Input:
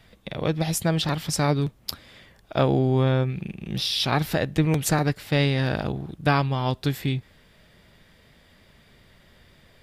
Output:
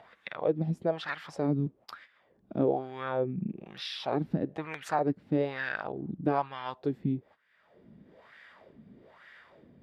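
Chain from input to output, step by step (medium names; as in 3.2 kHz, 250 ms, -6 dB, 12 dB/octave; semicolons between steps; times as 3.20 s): gate -45 dBFS, range -18 dB; upward compressor, threshold -25 dBFS; wah-wah 1.1 Hz 210–1800 Hz, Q 2.9; trim +2.5 dB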